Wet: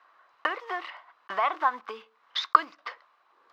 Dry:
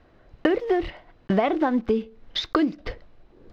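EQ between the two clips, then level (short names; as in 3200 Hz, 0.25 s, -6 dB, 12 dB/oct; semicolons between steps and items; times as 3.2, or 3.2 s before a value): resonant high-pass 1100 Hz, resonance Q 4.6; -3.5 dB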